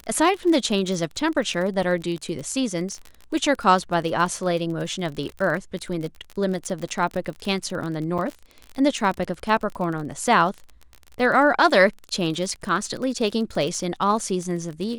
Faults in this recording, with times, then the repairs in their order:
crackle 35/s -28 dBFS
8.18–8.19 gap 6.7 ms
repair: de-click; interpolate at 8.18, 6.7 ms

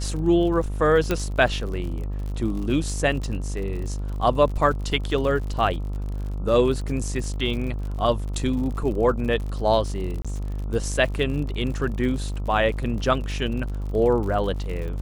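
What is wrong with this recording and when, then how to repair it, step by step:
buzz 50 Hz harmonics 27 -28 dBFS
crackle 57/s -32 dBFS
1.11 pop -9 dBFS
10.22–10.25 gap 26 ms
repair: de-click; de-hum 50 Hz, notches 27; interpolate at 10.22, 26 ms

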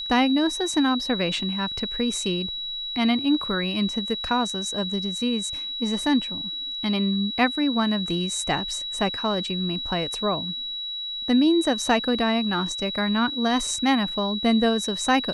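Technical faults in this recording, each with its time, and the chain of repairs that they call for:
tone 3900 Hz -29 dBFS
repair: notch 3900 Hz, Q 30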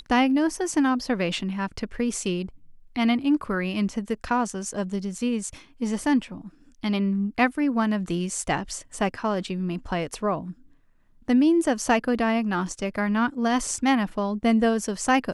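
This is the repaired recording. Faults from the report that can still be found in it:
none

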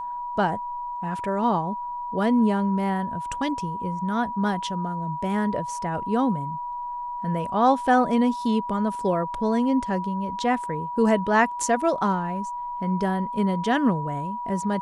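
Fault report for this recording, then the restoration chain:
tone 970 Hz -29 dBFS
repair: notch 970 Hz, Q 30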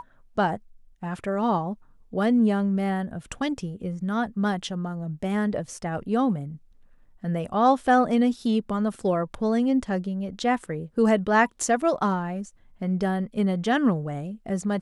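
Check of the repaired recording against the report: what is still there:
none

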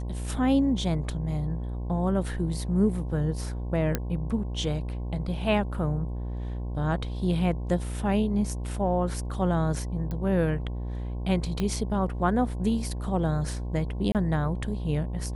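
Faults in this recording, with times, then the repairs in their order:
buzz 60 Hz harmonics 18 -32 dBFS
3.95 pop -11 dBFS
10.11 pop -22 dBFS
11.6 pop -16 dBFS
14.12–14.15 gap 28 ms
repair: de-click; de-hum 60 Hz, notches 18; interpolate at 14.12, 28 ms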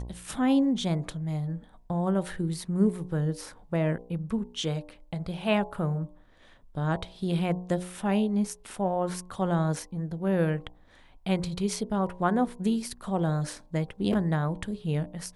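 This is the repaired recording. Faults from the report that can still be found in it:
10.11 pop
11.6 pop

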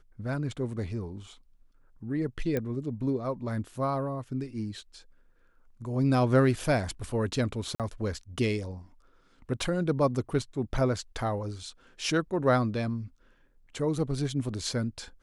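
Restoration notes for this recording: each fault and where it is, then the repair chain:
2.57 pop -17 dBFS
7.75–7.8 gap 47 ms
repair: de-click; interpolate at 7.75, 47 ms

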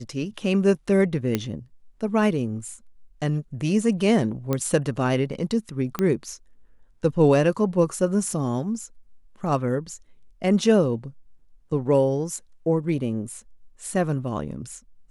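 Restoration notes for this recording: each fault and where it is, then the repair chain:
1.35 pop -9 dBFS
4.53 pop -11 dBFS
5.99 pop -12 dBFS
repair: de-click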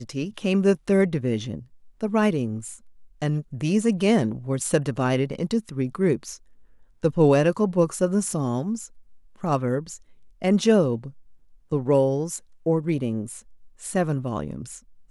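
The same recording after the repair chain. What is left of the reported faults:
5.99 pop

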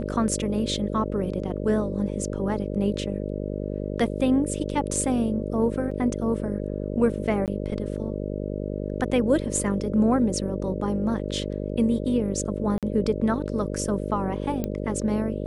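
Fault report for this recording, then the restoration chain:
buzz 50 Hz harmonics 12 -30 dBFS
5.91 gap 4.3 ms
7.46–7.48 gap 18 ms
12.78–12.83 gap 47 ms
14.64 pop -15 dBFS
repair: de-click; de-hum 50 Hz, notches 12; interpolate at 5.91, 4.3 ms; interpolate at 7.46, 18 ms; interpolate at 12.78, 47 ms

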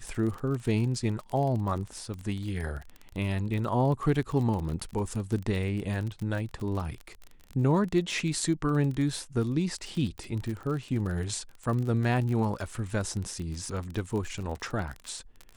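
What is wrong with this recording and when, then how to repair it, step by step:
crackle 34/s -33 dBFS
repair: de-click

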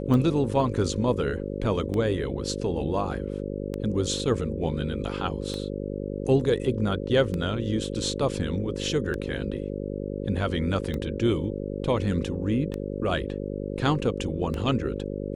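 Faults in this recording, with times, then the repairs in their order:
buzz 50 Hz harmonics 11 -32 dBFS
tick 33 1/3 rpm -18 dBFS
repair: de-click; de-hum 50 Hz, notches 11

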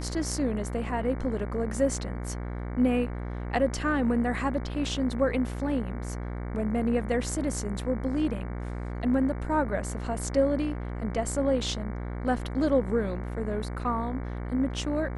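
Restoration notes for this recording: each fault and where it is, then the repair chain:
buzz 60 Hz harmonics 38 -34 dBFS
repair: de-hum 60 Hz, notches 38

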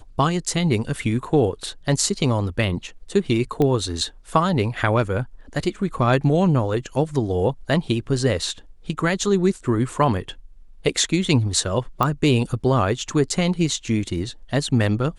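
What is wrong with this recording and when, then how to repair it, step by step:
3.62 pop -11 dBFS
12.03 pop -8 dBFS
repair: de-click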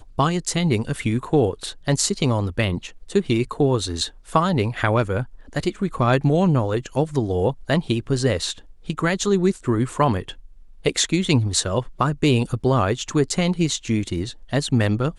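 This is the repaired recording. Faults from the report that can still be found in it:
none

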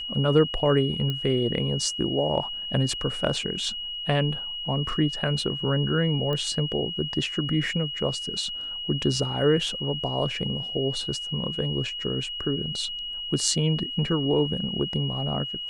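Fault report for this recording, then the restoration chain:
tone 2900 Hz -31 dBFS
1.1 pop -17 dBFS
6.33 pop -18 dBFS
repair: de-click; notch 2900 Hz, Q 30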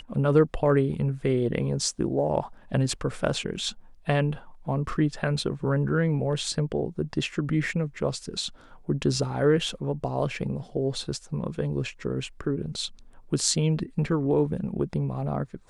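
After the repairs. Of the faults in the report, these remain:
none

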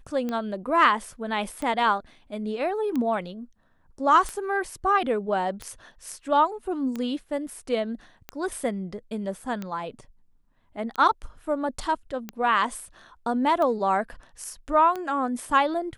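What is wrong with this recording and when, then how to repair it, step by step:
tick 45 rpm -18 dBFS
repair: de-click

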